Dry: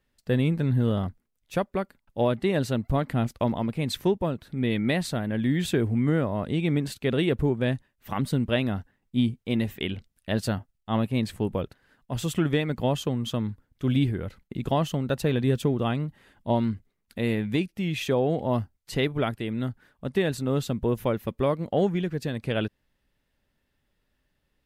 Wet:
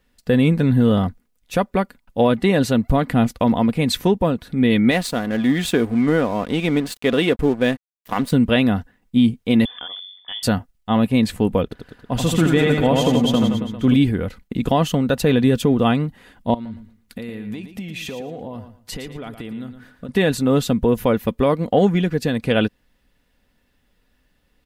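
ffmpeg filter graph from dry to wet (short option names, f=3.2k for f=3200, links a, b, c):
-filter_complex "[0:a]asettb=1/sr,asplit=3[a][b][c];[a]atrim=end=4.914[d];[b]atrim=start=4.91:end=8.32,asetpts=PTS-STARTPTS,afade=t=in:d=0.004:c=qsin,afade=t=out:st=3.406:d=0.004:c=qsin,equalizer=f=110:t=o:w=1.6:g=-8,aeval=exprs='sgn(val(0))*max(abs(val(0))-0.00596,0)':c=same[e];[c]atrim=start=8.316[f];[d][e]acrossfade=d=0.004:c1=hsin:c2=qsin[g];[g][f]acrossfade=d=0.004:c1=qsin:c2=hsin,asettb=1/sr,asplit=3[h][i][j];[h]atrim=end=9.654[k];[i]atrim=start=9.65:end=10.43,asetpts=PTS-STARTPTS,afade=t=in:d=0.004:c=qsin,afade=t=out:st=0.776:d=0.004:c=qsin,bandreject=f=47.1:t=h:w=4,bandreject=f=94.2:t=h:w=4,bandreject=f=141.3:t=h:w=4,bandreject=f=188.4:t=h:w=4,bandreject=f=235.5:t=h:w=4,bandreject=f=282.6:t=h:w=4,bandreject=f=329.7:t=h:w=4,bandreject=f=376.8:t=h:w=4,bandreject=f=423.9:t=h:w=4,bandreject=f=471:t=h:w=4,bandreject=f=518.1:t=h:w=4,bandreject=f=565.2:t=h:w=4,bandreject=f=612.3:t=h:w=4,bandreject=f=659.4:t=h:w=4,bandreject=f=706.5:t=h:w=4,bandreject=f=753.6:t=h:w=4,bandreject=f=800.7:t=h:w=4,bandreject=f=847.8:t=h:w=4,bandreject=f=894.9:t=h:w=4,bandreject=f=942:t=h:w=4,bandreject=f=989.1:t=h:w=4,bandreject=f=1.0362k:t=h:w=4,bandreject=f=1.0833k:t=h:w=4,bandreject=f=1.1304k:t=h:w=4,bandreject=f=1.1775k:t=h:w=4,bandreject=f=1.2246k:t=h:w=4,bandreject=f=1.2717k:t=h:w=4,bandreject=f=1.3188k:t=h:w=4,bandreject=f=1.3659k:t=h:w=4,bandreject=f=1.413k:t=h:w=4,bandreject=f=1.4601k:t=h:w=4,bandreject=f=1.5072k:t=h:w=4,bandreject=f=1.5543k:t=h:w=4,bandreject=f=1.6014k:t=h:w=4,bandreject=f=1.6485k:t=h:w=4,bandreject=f=1.6956k:t=h:w=4,acompressor=threshold=-43dB:ratio=2.5:attack=3.2:release=140:knee=1:detection=peak,lowpass=f=3.1k:t=q:w=0.5098,lowpass=f=3.1k:t=q:w=0.6013,lowpass=f=3.1k:t=q:w=0.9,lowpass=f=3.1k:t=q:w=2.563,afreqshift=-3600[l];[j]atrim=start=10.426[m];[k][l]acrossfade=d=0.004:c1=hsin:c2=qsin[n];[n][m]acrossfade=d=0.004:c1=qsin:c2=hsin,asettb=1/sr,asplit=3[o][p][q];[o]atrim=end=11.634[r];[p]atrim=start=11.63:end=13.94,asetpts=PTS-STARTPTS,afade=t=in:d=0.004:c=qsin,afade=t=out:st=2.306:d=0.004:c=qsin,highshelf=f=5.2k:g=-4,aecho=1:1:80|172|277.8|399.5|539.4:0.631|0.398|0.251|0.158|0.1,atrim=end_sample=101871[s];[q]atrim=start=13.936[t];[r][s]acrossfade=d=0.004:c1=hsin:c2=qsin[u];[u][t]acrossfade=d=0.004:c1=qsin:c2=hsin,asettb=1/sr,asplit=3[v][w][x];[v]atrim=end=16.544[y];[w]atrim=start=16.54:end=20.09,asetpts=PTS-STARTPTS,afade=t=in:d=0.004:c=qsin,afade=t=out:st=3.546:d=0.004:c=qsin,acompressor=threshold=-36dB:ratio=16:attack=3.2:release=140:knee=1:detection=peak,aecho=1:1:114|228|342:0.316|0.0727|0.0167,atrim=end_sample=156555[z];[x]atrim=start=20.086[aa];[y][z]acrossfade=d=0.004:c1=hsin:c2=qsin[ab];[ab][aa]acrossfade=d=0.004:c1=qsin:c2=hsin,aecho=1:1:4.1:0.37,alimiter=level_in=14dB:limit=-1dB:release=50:level=0:latency=1,volume=-5dB"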